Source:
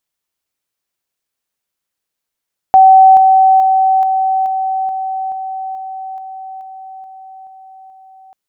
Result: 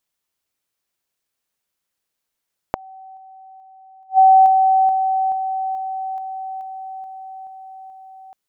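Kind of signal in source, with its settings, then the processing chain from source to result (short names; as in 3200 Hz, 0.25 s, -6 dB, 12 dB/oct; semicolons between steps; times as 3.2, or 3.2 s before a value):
level ladder 763 Hz -2 dBFS, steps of -3 dB, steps 13, 0.43 s 0.00 s
dynamic EQ 830 Hz, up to +8 dB, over -22 dBFS, Q 4.1; flipped gate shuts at -3 dBFS, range -40 dB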